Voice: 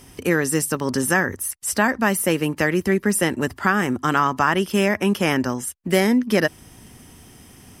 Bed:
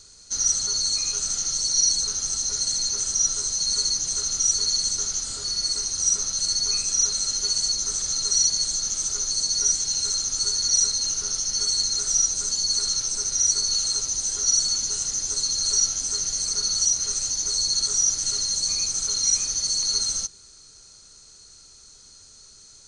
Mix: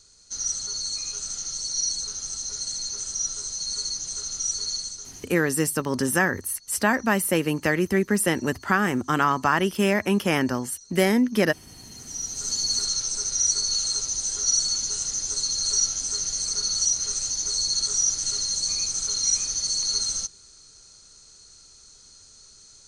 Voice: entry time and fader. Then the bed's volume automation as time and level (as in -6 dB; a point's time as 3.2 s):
5.05 s, -2.5 dB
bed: 4.75 s -6 dB
5.6 s -29 dB
11.66 s -29 dB
12.51 s -1.5 dB